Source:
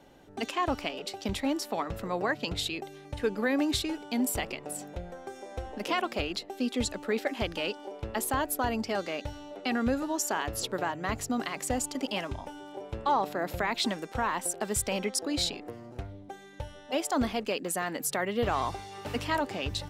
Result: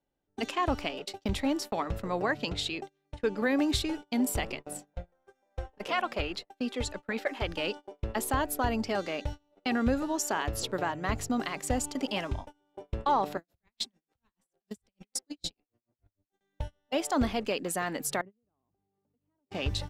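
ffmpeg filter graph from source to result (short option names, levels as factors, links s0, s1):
-filter_complex "[0:a]asettb=1/sr,asplit=3[s0][s1][s2];[s0]atrim=end=2.504[s3];[s1]atrim=start=2.5:end=3.42,asetpts=PTS-STARTPTS,afade=t=in:d=0.004:c=qsin,afade=t=out:st=0.916:d=0.004:c=qsin,lowpass=8800,lowshelf=f=110:g=-8[s4];[s2]atrim=start=3.416[s5];[s3][s4]acrossfade=d=0.004:c1=hsin:c2=qsin[s6];[s6][s5]acrossfade=d=0.004:c1=qsin:c2=hsin,asettb=1/sr,asplit=3[s7][s8][s9];[s7]atrim=end=4.904[s10];[s8]atrim=start=4.9:end=7.49,asetpts=PTS-STARTPTS,afade=t=in:d=0.004:c=qsin,afade=t=out:st=2.586:d=0.004:c=qsin,equalizer=f=1300:t=o:w=2.4:g=5.5,flanger=delay=1.2:depth=1.1:regen=-59:speed=1.8:shape=sinusoidal[s11];[s9]atrim=start=7.486[s12];[s10][s11]acrossfade=d=0.004:c1=hsin:c2=qsin[s13];[s13][s12]acrossfade=d=0.004:c1=qsin:c2=hsin,asettb=1/sr,asplit=3[s14][s15][s16];[s14]atrim=end=13.374[s17];[s15]atrim=start=13.37:end=16.41,asetpts=PTS-STARTPTS,afade=t=in:d=0.004:c=qsin,afade=t=out:st=3.036:d=0.004:c=qsin,bandreject=f=74.93:t=h:w=4,bandreject=f=149.86:t=h:w=4,bandreject=f=224.79:t=h:w=4,bandreject=f=299.72:t=h:w=4,bandreject=f=374.65:t=h:w=4,bandreject=f=449.58:t=h:w=4,bandreject=f=524.51:t=h:w=4,bandreject=f=599.44:t=h:w=4,bandreject=f=674.37:t=h:w=4,bandreject=f=749.3:t=h:w=4,bandreject=f=824.23:t=h:w=4,bandreject=f=899.16:t=h:w=4,bandreject=f=974.09:t=h:w=4,bandreject=f=1049.02:t=h:w=4,bandreject=f=1123.95:t=h:w=4,bandreject=f=1198.88:t=h:w=4,bandreject=f=1273.81:t=h:w=4,bandreject=f=1348.74:t=h:w=4,bandreject=f=1423.67:t=h:w=4,bandreject=f=1498.6:t=h:w=4,bandreject=f=1573.53:t=h:w=4,bandreject=f=1648.46:t=h:w=4,bandreject=f=1723.39:t=h:w=4,bandreject=f=1798.32:t=h:w=4,bandreject=f=1873.25:t=h:w=4,bandreject=f=1948.18:t=h:w=4,bandreject=f=2023.11:t=h:w=4,bandreject=f=2098.04:t=h:w=4,bandreject=f=2172.97:t=h:w=4,bandreject=f=2247.9:t=h:w=4,bandreject=f=2322.83:t=h:w=4,bandreject=f=2397.76:t=h:w=4,bandreject=f=2472.69:t=h:w=4,bandreject=f=2547.62:t=h:w=4,bandreject=f=2622.55:t=h:w=4,bandreject=f=2697.48:t=h:w=4,bandreject=f=2772.41:t=h:w=4,bandreject=f=2847.34:t=h:w=4,acrossover=split=290|3000[s18][s19][s20];[s19]acompressor=threshold=0.00794:ratio=10:attack=3.2:release=140:knee=2.83:detection=peak[s21];[s18][s21][s20]amix=inputs=3:normalize=0,aeval=exprs='val(0)*pow(10,-35*(0.5-0.5*cos(2*PI*6.7*n/s))/20)':c=same[s22];[s16]atrim=start=16.406[s23];[s17][s22]acrossfade=d=0.004:c1=hsin:c2=qsin[s24];[s24][s23]acrossfade=d=0.004:c1=qsin:c2=hsin,asettb=1/sr,asplit=3[s25][s26][s27];[s25]atrim=end=18.214[s28];[s26]atrim=start=18.21:end=19.51,asetpts=PTS-STARTPTS,afade=t=in:d=0.004:c=qsin,afade=t=out:st=1.296:d=0.004:c=qsin,bandpass=f=220:t=q:w=1.4,acompressor=threshold=0.00398:ratio=10:attack=3.2:release=140:knee=1:detection=peak[s29];[s27]atrim=start=19.506[s30];[s28][s29]acrossfade=d=0.004:c1=hsin:c2=qsin[s31];[s31][s30]acrossfade=d=0.004:c1=qsin:c2=hsin,highshelf=f=9900:g=-4.5,agate=range=0.0355:threshold=0.0126:ratio=16:detection=peak,lowshelf=f=80:g=8.5"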